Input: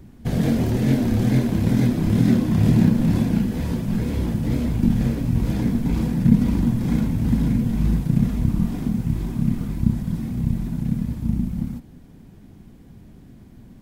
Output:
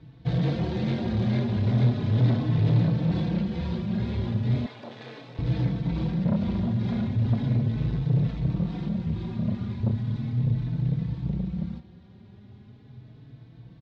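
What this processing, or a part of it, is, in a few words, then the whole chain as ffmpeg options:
barber-pole flanger into a guitar amplifier: -filter_complex "[0:a]asplit=2[s0][s1];[s1]adelay=4.1,afreqshift=0.37[s2];[s0][s2]amix=inputs=2:normalize=1,asoftclip=type=tanh:threshold=0.112,highpass=79,equalizer=f=120:t=q:w=4:g=8,equalizer=f=260:t=q:w=4:g=-7,equalizer=f=3800:t=q:w=4:g=7,lowpass=f=4500:w=0.5412,lowpass=f=4500:w=1.3066,asettb=1/sr,asplit=3[s3][s4][s5];[s3]atrim=end=4.664[s6];[s4]atrim=start=4.66:end=5.39,asetpts=PTS-STARTPTS,afade=t=in:d=0.004:c=qsin,afade=t=out:st=0.726:d=0.004:c=qsin,highpass=590[s7];[s5]atrim=start=5.386[s8];[s6][s7]acrossfade=d=0.004:c1=hsin:c2=qsin[s9];[s9][s8]acrossfade=d=0.004:c1=qsin:c2=hsin"

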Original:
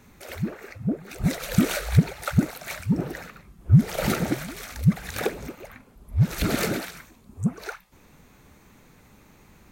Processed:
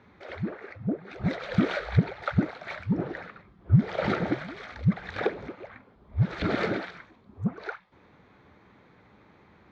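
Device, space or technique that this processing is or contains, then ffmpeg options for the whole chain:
guitar cabinet: -af "highpass=100,equalizer=f=150:t=q:w=4:g=-6,equalizer=f=240:t=q:w=4:g=-5,equalizer=f=2700:t=q:w=4:g=-8,lowpass=f=3500:w=0.5412,lowpass=f=3500:w=1.3066"

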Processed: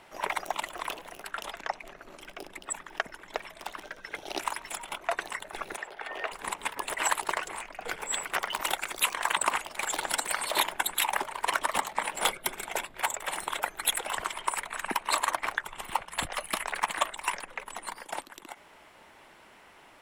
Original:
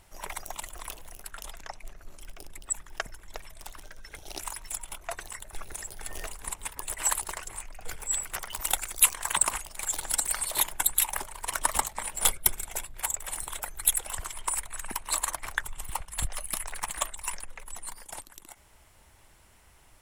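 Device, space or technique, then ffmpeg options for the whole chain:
DJ mixer with the lows and highs turned down: -filter_complex "[0:a]acrossover=split=190 3900:gain=0.0631 1 0.178[s0][s1][s2];[s0][s1][s2]amix=inputs=3:normalize=0,alimiter=limit=0.0944:level=0:latency=1:release=129,asettb=1/sr,asplit=3[s3][s4][s5];[s3]atrim=end=5.774[s6];[s4]atrim=start=5.77:end=6.32,asetpts=PTS-STARTPTS,afade=t=in:d=0.004:c=qsin,afade=t=out:st=0.546:d=0.004:c=qsin,acrossover=split=400 3600:gain=0.2 1 0.141[s7][s8][s9];[s7][s8][s9]amix=inputs=3:normalize=0[s10];[s5]atrim=start=6.316[s11];[s6][s10]acrossfade=d=0.004:c1=hsin:c2=qsin[s12];[s12][s11]acrossfade=d=0.004:c1=qsin:c2=hsin,volume=2.82"

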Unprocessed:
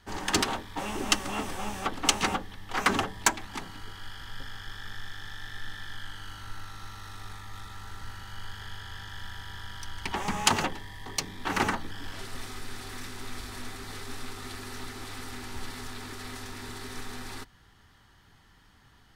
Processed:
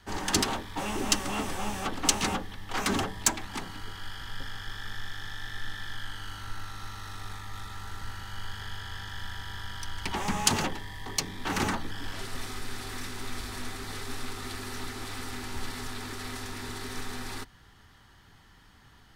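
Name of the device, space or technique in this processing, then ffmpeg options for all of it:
one-band saturation: -filter_complex "[0:a]acrossover=split=290|3800[s0][s1][s2];[s1]asoftclip=type=tanh:threshold=0.0316[s3];[s0][s3][s2]amix=inputs=3:normalize=0,volume=1.33"

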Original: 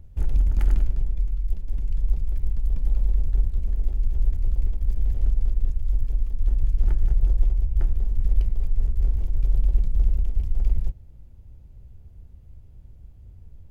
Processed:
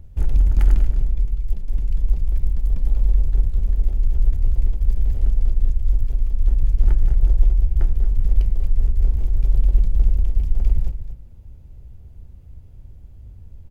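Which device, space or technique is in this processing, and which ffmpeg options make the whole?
ducked delay: -filter_complex "[0:a]asplit=3[s0][s1][s2];[s1]adelay=232,volume=0.398[s3];[s2]apad=whole_len=614560[s4];[s3][s4]sidechaincompress=threshold=0.112:ratio=8:attack=48:release=1300[s5];[s0][s5]amix=inputs=2:normalize=0,volume=1.58"

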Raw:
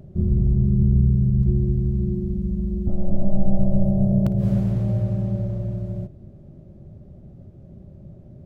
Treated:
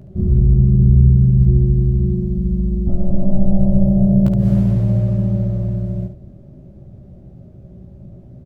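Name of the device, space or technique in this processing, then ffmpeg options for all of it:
slapback doubling: -filter_complex "[0:a]asplit=3[s0][s1][s2];[s1]adelay=16,volume=0.596[s3];[s2]adelay=71,volume=0.473[s4];[s0][s3][s4]amix=inputs=3:normalize=0,volume=1.26"

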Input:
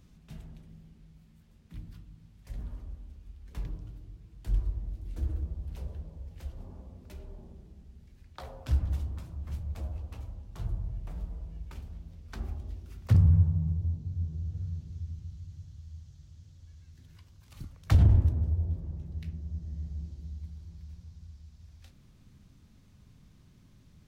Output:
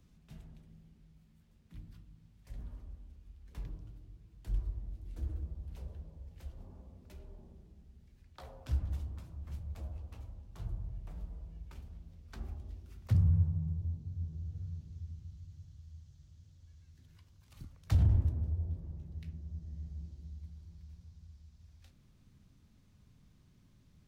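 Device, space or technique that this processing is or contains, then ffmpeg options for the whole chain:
one-band saturation: -filter_complex "[0:a]acrossover=split=200|3300[s0][s1][s2];[s1]asoftclip=type=tanh:threshold=0.0188[s3];[s0][s3][s2]amix=inputs=3:normalize=0,volume=0.501"

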